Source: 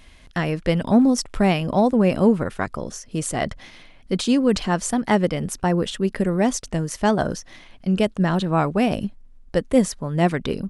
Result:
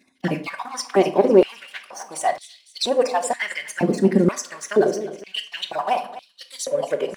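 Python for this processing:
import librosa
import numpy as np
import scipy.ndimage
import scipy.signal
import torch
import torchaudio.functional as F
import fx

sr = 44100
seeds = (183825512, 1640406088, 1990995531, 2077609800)

p1 = fx.spec_dropout(x, sr, seeds[0], share_pct=37)
p2 = fx.leveller(p1, sr, passes=2)
p3 = fx.notch(p2, sr, hz=1300.0, q=9.8)
p4 = fx.stretch_vocoder(p3, sr, factor=0.67)
p5 = p4 + fx.echo_feedback(p4, sr, ms=252, feedback_pct=47, wet_db=-16, dry=0)
p6 = fx.room_shoebox(p5, sr, seeds[1], volume_m3=710.0, walls='furnished', distance_m=1.1)
p7 = fx.filter_held_highpass(p6, sr, hz=2.1, low_hz=250.0, high_hz=3900.0)
y = p7 * librosa.db_to_amplitude(-6.0)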